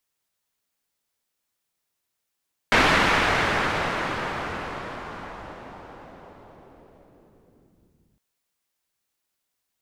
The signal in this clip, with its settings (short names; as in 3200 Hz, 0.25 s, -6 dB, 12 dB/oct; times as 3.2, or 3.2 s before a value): swept filtered noise white, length 5.46 s lowpass, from 2000 Hz, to 160 Hz, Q 1, linear, gain ramp -39 dB